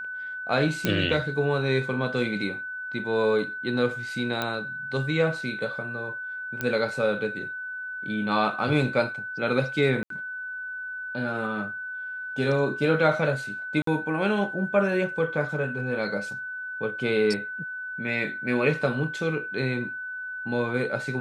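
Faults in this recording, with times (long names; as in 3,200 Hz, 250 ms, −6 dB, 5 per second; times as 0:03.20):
whistle 1,500 Hz −32 dBFS
0:00.85: click −9 dBFS
0:04.42: click −13 dBFS
0:06.61: click −14 dBFS
0:10.03–0:10.10: drop-out 73 ms
0:13.82–0:13.87: drop-out 53 ms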